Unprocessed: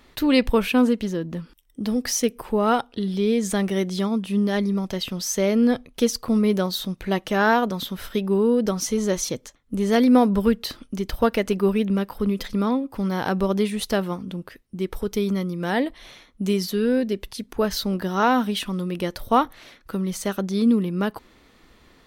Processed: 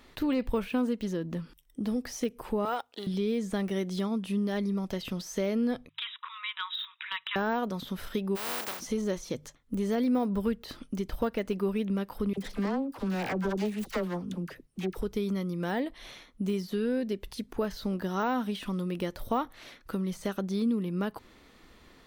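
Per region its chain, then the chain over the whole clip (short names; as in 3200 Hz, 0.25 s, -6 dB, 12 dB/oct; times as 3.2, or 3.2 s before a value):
2.65–3.07 G.711 law mismatch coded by A + HPF 510 Hz
5.89–7.36 brick-wall FIR band-pass 910–3900 Hz + tilt +4.5 dB/oct
8.35–8.79 spectral contrast lowered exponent 0.11 + HPF 490 Hz 6 dB/oct
12.33–15.02 self-modulated delay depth 0.4 ms + dispersion lows, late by 48 ms, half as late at 720 Hz
whole clip: de-esser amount 85%; notches 50/100/150 Hz; compressor 2:1, threshold -29 dBFS; gain -2 dB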